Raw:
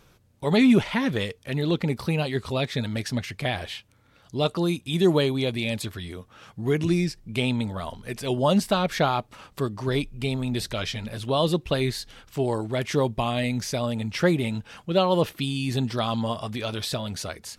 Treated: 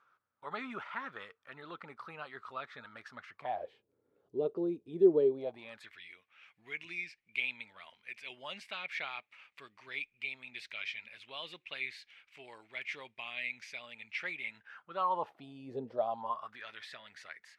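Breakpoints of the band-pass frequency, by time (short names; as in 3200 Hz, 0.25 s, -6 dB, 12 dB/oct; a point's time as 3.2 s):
band-pass, Q 5.6
3.33 s 1300 Hz
3.74 s 410 Hz
5.29 s 410 Hz
5.94 s 2300 Hz
14.4 s 2300 Hz
15.81 s 450 Hz
16.69 s 1900 Hz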